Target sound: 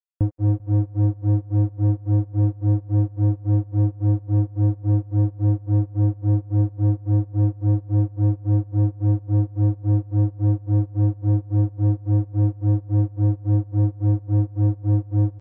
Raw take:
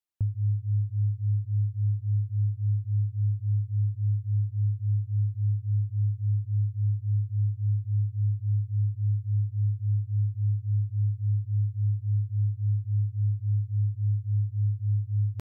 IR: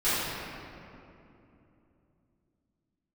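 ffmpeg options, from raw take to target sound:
-af "acrusher=bits=3:mix=0:aa=0.5,aecho=1:1:196|392|588|784:0.0794|0.0461|0.0267|0.0155,volume=2" -ar 44100 -c:a libmp3lame -b:a 32k

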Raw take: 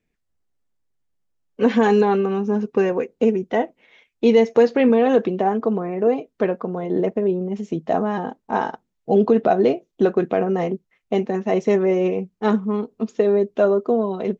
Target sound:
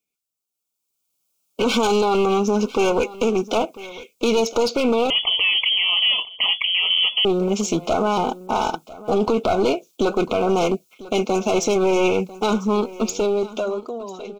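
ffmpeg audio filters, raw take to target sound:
-filter_complex "[0:a]agate=range=0.501:threshold=0.00398:ratio=16:detection=peak,highpass=f=340:p=1,acompressor=threshold=0.0398:ratio=2,alimiter=limit=0.0794:level=0:latency=1:release=14,dynaudnorm=f=160:g=13:m=6.68,crystalizer=i=6:c=0,aeval=exprs='clip(val(0),-1,0.188)':c=same,asuperstop=centerf=1800:order=20:qfactor=2.8,aecho=1:1:997:0.119,asettb=1/sr,asplit=3[s0][s1][s2];[s0]atrim=end=5.104[s3];[s1]atrim=start=5.1:end=7.25,asetpts=PTS-STARTPTS,afade=t=in:d=0.004:c=qsin,afade=t=out:st=2.146:d=0.004:c=qsin,lowpass=f=2900:t=q:w=0.5098,lowpass=f=2900:t=q:w=0.6013,lowpass=f=2900:t=q:w=0.9,lowpass=f=2900:t=q:w=2.563,afreqshift=-3400[s4];[s2]atrim=start=7.246[s5];[s3][s4]acrossfade=d=0.004:c1=hsin:c2=qsin[s6];[s6][s5]acrossfade=d=0.004:c1=qsin:c2=hsin,volume=0.562"

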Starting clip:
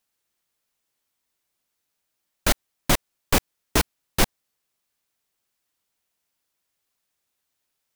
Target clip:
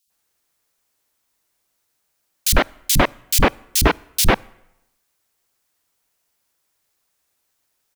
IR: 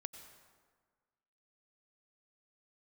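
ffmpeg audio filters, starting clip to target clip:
-filter_complex "[0:a]acrossover=split=200|3100[s0][s1][s2];[s0]adelay=60[s3];[s1]adelay=100[s4];[s3][s4][s2]amix=inputs=3:normalize=0,asplit=2[s5][s6];[1:a]atrim=start_sample=2205,asetrate=79380,aresample=44100[s7];[s6][s7]afir=irnorm=-1:irlink=0,volume=0.355[s8];[s5][s8]amix=inputs=2:normalize=0,volume=2.11"

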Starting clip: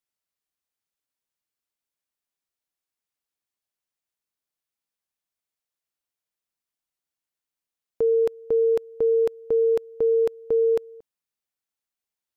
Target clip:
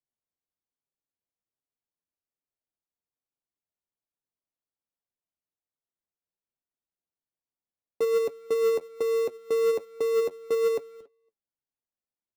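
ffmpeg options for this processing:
-filter_complex "[0:a]lowpass=1000,acrossover=split=170[s0][s1];[s0]acompressor=threshold=0.001:ratio=6[s2];[s2][s1]amix=inputs=2:normalize=0,flanger=delay=7.1:depth=4.4:regen=49:speed=1.2:shape=sinusoidal,asplit=2[s3][s4];[s4]acrusher=samples=28:mix=1:aa=0.000001,volume=0.355[s5];[s3][s5]amix=inputs=2:normalize=0,asoftclip=type=tanh:threshold=0.15,asplit=2[s6][s7];[s7]adelay=280,highpass=300,lowpass=3400,asoftclip=type=hard:threshold=0.0422,volume=0.0794[s8];[s6][s8]amix=inputs=2:normalize=0"

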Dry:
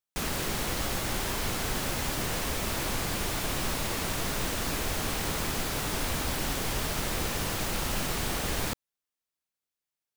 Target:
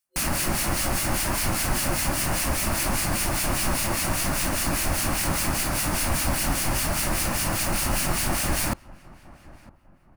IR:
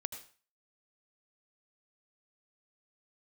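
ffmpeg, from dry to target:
-filter_complex "[0:a]superequalizer=7b=0.316:13b=0.501:16b=1.78,asplit=2[s0][s1];[s1]adelay=959,lowpass=f=1400:p=1,volume=0.0944,asplit=2[s2][s3];[s3]adelay=959,lowpass=f=1400:p=1,volume=0.38,asplit=2[s4][s5];[s5]adelay=959,lowpass=f=1400:p=1,volume=0.38[s6];[s0][s2][s4][s6]amix=inputs=4:normalize=0,acrossover=split=1700[s7][s8];[s7]aeval=exprs='val(0)*(1-0.7/2+0.7/2*cos(2*PI*5*n/s))':c=same[s9];[s8]aeval=exprs='val(0)*(1-0.7/2-0.7/2*cos(2*PI*5*n/s))':c=same[s10];[s9][s10]amix=inputs=2:normalize=0,volume=2.82"

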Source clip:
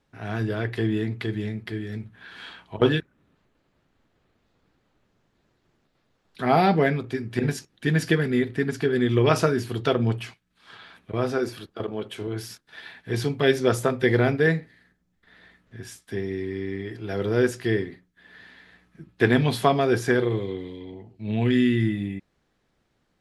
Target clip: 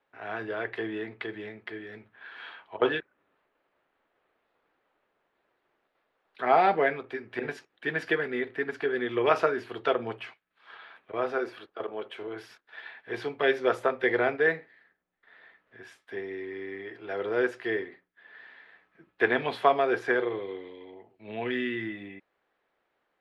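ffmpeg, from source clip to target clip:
-filter_complex "[0:a]acrossover=split=390 3100:gain=0.0708 1 0.0794[s0][s1][s2];[s0][s1][s2]amix=inputs=3:normalize=0"

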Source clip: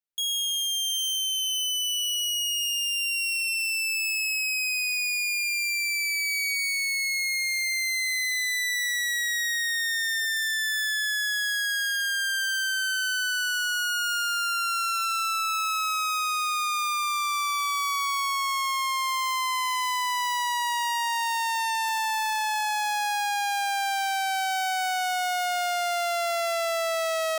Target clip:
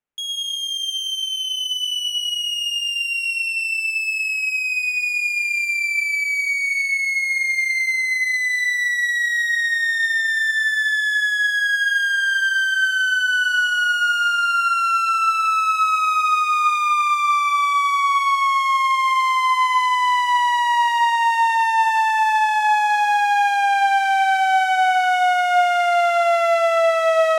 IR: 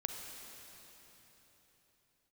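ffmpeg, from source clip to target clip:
-filter_complex "[0:a]aemphasis=mode=reproduction:type=50fm,asplit=2[s0][s1];[s1]lowpass=f=4500:w=0.5412,lowpass=f=4500:w=1.3066[s2];[1:a]atrim=start_sample=2205,afade=t=out:st=0.38:d=0.01,atrim=end_sample=17199[s3];[s2][s3]afir=irnorm=-1:irlink=0,volume=1.12[s4];[s0][s4]amix=inputs=2:normalize=0,volume=1.68"

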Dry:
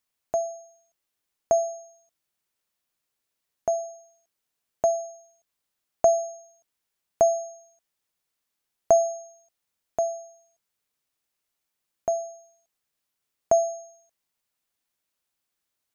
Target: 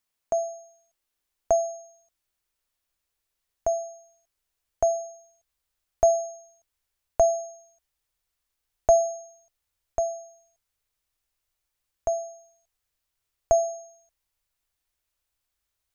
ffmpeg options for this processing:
-af "atempo=1,asubboost=boost=10.5:cutoff=60"

